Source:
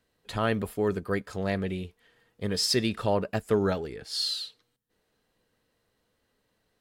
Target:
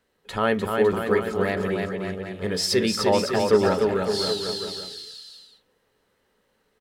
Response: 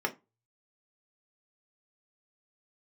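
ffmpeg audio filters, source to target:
-filter_complex "[0:a]aecho=1:1:300|555|771.8|956|1113:0.631|0.398|0.251|0.158|0.1,asplit=2[a][b];[1:a]atrim=start_sample=2205,lowpass=5.7k[c];[b][c]afir=irnorm=-1:irlink=0,volume=-11dB[d];[a][d]amix=inputs=2:normalize=0,volume=1.5dB"

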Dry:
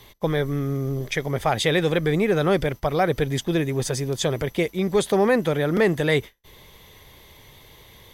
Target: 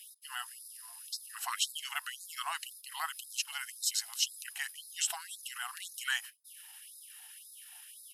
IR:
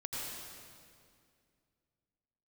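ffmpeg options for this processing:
-af "aemphasis=mode=production:type=50fm,asetrate=37084,aresample=44100,atempo=1.18921,afftfilt=real='re*gte(b*sr/1024,670*pow(3700/670,0.5+0.5*sin(2*PI*1.9*pts/sr)))':imag='im*gte(b*sr/1024,670*pow(3700/670,0.5+0.5*sin(2*PI*1.9*pts/sr)))':win_size=1024:overlap=0.75,volume=-8dB"

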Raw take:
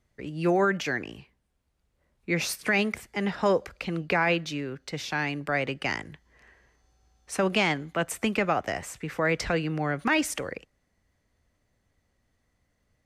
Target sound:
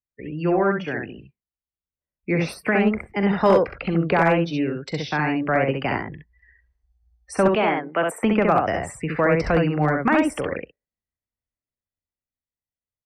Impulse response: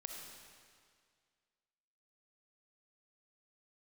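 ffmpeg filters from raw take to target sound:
-filter_complex "[0:a]asettb=1/sr,asplit=3[a][b][c];[a]atrim=end=7.484[d];[b]atrim=start=7.48:end=8.23,asetpts=PTS-STARTPTS,afade=t=in:d=0.004:c=qsin,afade=t=out:st=0.746:d=0.004:c=qsin,highpass=310[e];[c]atrim=start=8.226[f];[d][e]acrossfade=d=0.004:c1=hsin:c2=qsin[g];[g][f]acrossfade=d=0.004:c1=qsin:c2=hsin,acrossover=split=830|1500[h][i][j];[j]acompressor=threshold=-40dB:ratio=10[k];[h][i][k]amix=inputs=3:normalize=0,bandreject=f=6.6k:w=5,asplit=2[l][m];[m]asoftclip=type=tanh:threshold=-23.5dB,volume=-9.5dB[n];[l][n]amix=inputs=2:normalize=0,dynaudnorm=f=410:g=9:m=5dB,afftdn=nr=32:nf=-39,aecho=1:1:42|66:0.178|0.668,asoftclip=type=hard:threshold=-9.5dB"

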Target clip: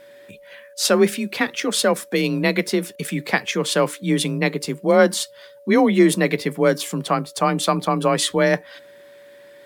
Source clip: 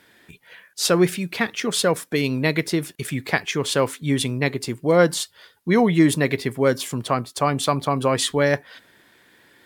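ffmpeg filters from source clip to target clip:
-af "afreqshift=31,aeval=exprs='val(0)+0.00562*sin(2*PI*570*n/s)':c=same,volume=1.5dB"

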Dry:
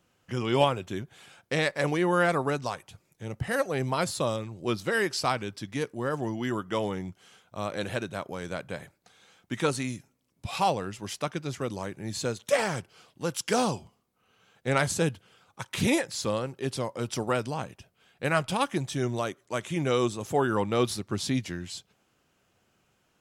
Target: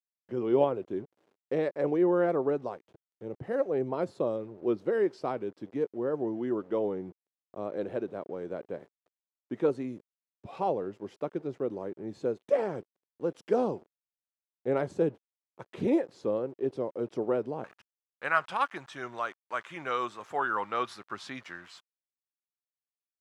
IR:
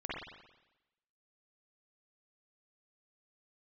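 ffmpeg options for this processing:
-af "aeval=exprs='val(0)*gte(abs(val(0)),0.00562)':c=same,asetnsamples=n=441:p=0,asendcmd='17.64 bandpass f 1300',bandpass=f=400:t=q:w=1.8:csg=0,volume=3.5dB"

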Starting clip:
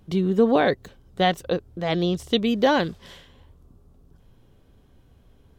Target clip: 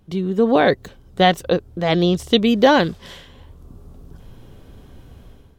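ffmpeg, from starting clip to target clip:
-af "dynaudnorm=f=350:g=3:m=14dB,volume=-1dB"

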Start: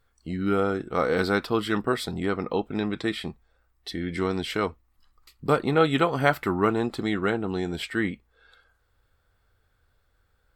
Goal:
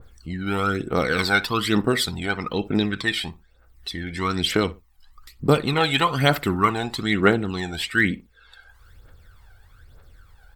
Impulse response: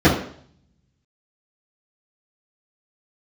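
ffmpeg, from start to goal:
-filter_complex "[0:a]acompressor=mode=upward:threshold=-44dB:ratio=2.5,aphaser=in_gain=1:out_gain=1:delay=1.4:decay=0.65:speed=1.1:type=triangular,asplit=2[a][b];[b]adelay=60,lowpass=f=1.4k:p=1,volume=-16.5dB,asplit=2[c][d];[d]adelay=60,lowpass=f=1.4k:p=1,volume=0.25[e];[c][e]amix=inputs=2:normalize=0[f];[a][f]amix=inputs=2:normalize=0,adynamicequalizer=threshold=0.0126:dfrequency=1500:dqfactor=0.7:tfrequency=1500:tqfactor=0.7:attack=5:release=100:ratio=0.375:range=4:mode=boostabove:tftype=highshelf"

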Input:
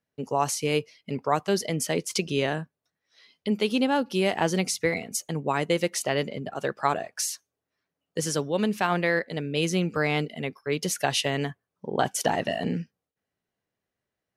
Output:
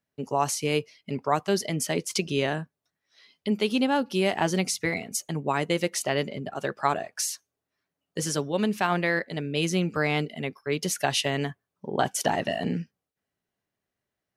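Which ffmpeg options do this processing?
-af "bandreject=f=490:w=12"

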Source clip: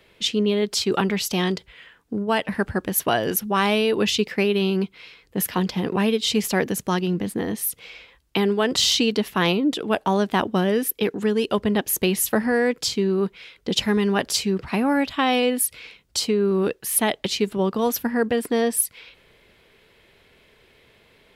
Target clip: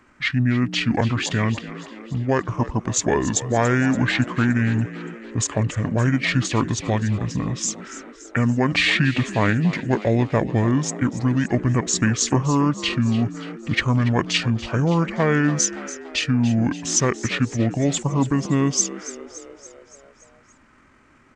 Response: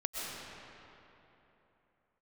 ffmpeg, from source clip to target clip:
-filter_complex "[0:a]asetrate=26222,aresample=44100,atempo=1.68179,asplit=7[a][b][c][d][e][f][g];[b]adelay=285,afreqshift=56,volume=-15dB[h];[c]adelay=570,afreqshift=112,volume=-19.6dB[i];[d]adelay=855,afreqshift=168,volume=-24.2dB[j];[e]adelay=1140,afreqshift=224,volume=-28.7dB[k];[f]adelay=1425,afreqshift=280,volume=-33.3dB[l];[g]adelay=1710,afreqshift=336,volume=-37.9dB[m];[a][h][i][j][k][l][m]amix=inputs=7:normalize=0,volume=1.5dB"

